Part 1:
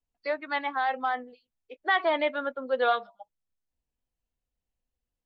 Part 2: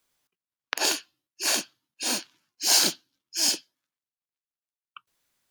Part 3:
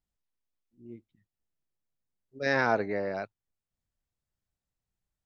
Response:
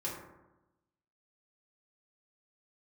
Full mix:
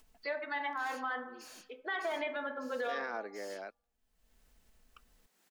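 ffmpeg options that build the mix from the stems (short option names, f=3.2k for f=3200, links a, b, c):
-filter_complex "[0:a]aecho=1:1:4.6:0.53,acompressor=threshold=-24dB:ratio=6,volume=-7.5dB,asplit=2[a][b];[b]volume=-6dB[c];[1:a]alimiter=level_in=1.5dB:limit=-24dB:level=0:latency=1:release=52,volume=-1.5dB,asoftclip=type=tanh:threshold=-34.5dB,volume=-3dB,afade=t=out:st=1.76:d=0.65:silence=0.375837,afade=t=in:st=3.22:d=0.5:silence=0.266073[d];[2:a]highpass=f=250:w=0.5412,highpass=f=250:w=1.3066,adelay=450,volume=-10dB[e];[a][e]amix=inputs=2:normalize=0,acompressor=mode=upward:threshold=-45dB:ratio=2.5,alimiter=level_in=3.5dB:limit=-24dB:level=0:latency=1:release=395,volume=-3.5dB,volume=0dB[f];[3:a]atrim=start_sample=2205[g];[c][g]afir=irnorm=-1:irlink=0[h];[d][f][h]amix=inputs=3:normalize=0,equalizer=f=1.7k:t=o:w=0.77:g=2.5,alimiter=level_in=3.5dB:limit=-24dB:level=0:latency=1:release=28,volume=-3.5dB"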